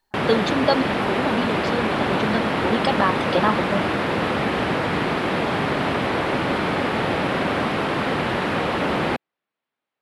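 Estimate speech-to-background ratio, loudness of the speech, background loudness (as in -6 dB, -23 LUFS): -2.5 dB, -25.0 LUFS, -22.5 LUFS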